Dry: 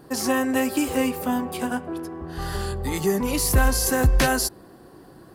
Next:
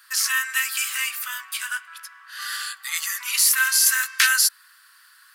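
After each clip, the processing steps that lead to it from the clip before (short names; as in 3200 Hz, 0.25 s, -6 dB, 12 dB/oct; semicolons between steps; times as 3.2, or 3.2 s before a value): steep high-pass 1300 Hz 48 dB/oct; gain +7.5 dB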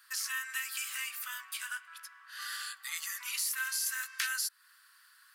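compressor 2:1, threshold -28 dBFS, peak gain reduction 8.5 dB; gain -8.5 dB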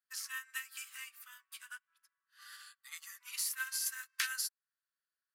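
upward expander 2.5:1, over -54 dBFS; gain +1 dB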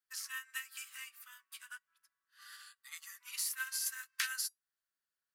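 resonator 960 Hz, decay 0.15 s, harmonics all, mix 40%; gain +3.5 dB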